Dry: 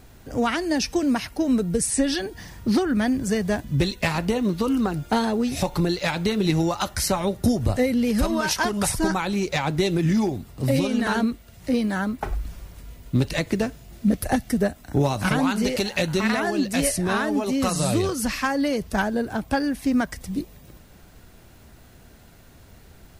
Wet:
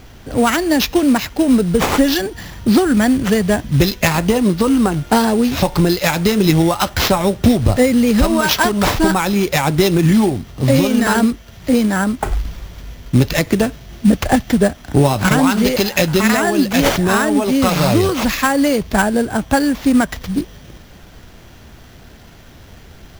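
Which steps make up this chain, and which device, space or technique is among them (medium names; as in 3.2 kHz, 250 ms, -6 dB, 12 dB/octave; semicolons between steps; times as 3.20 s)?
early companding sampler (sample-rate reducer 9.1 kHz, jitter 0%; companded quantiser 6-bit); trim +8.5 dB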